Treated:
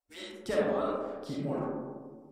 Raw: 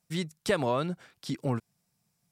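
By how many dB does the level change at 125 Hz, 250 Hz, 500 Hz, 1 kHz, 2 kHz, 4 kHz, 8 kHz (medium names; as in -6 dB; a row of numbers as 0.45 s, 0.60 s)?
-8.0 dB, -2.0 dB, +0.5 dB, -3.0 dB, -5.0 dB, -6.5 dB, no reading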